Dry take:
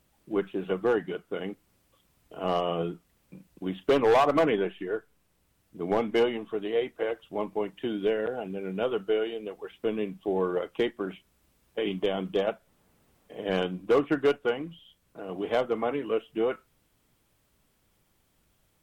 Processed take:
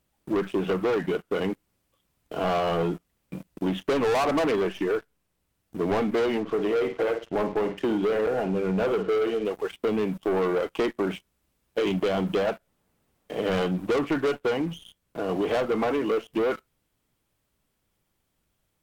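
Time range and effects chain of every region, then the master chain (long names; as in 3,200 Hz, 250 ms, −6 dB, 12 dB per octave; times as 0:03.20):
0:06.40–0:09.45: low-pass filter 2,600 Hz + flutter between parallel walls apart 9.1 metres, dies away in 0.29 s
whole clip: dynamic equaliser 4,800 Hz, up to −4 dB, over −48 dBFS, Q 0.8; leveller curve on the samples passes 3; downward compressor, threshold −22 dBFS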